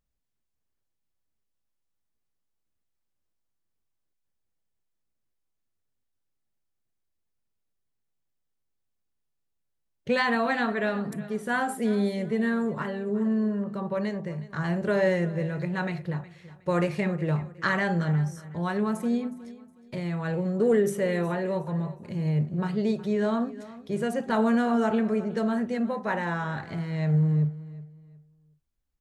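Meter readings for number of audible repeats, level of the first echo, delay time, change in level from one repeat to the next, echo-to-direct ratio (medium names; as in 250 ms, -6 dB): 2, -17.5 dB, 365 ms, -11.0 dB, -17.0 dB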